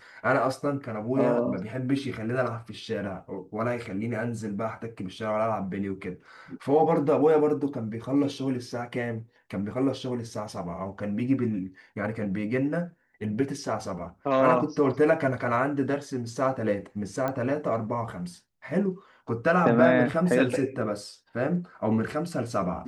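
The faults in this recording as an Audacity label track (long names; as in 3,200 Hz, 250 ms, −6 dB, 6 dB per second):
17.280000	17.280000	click −17 dBFS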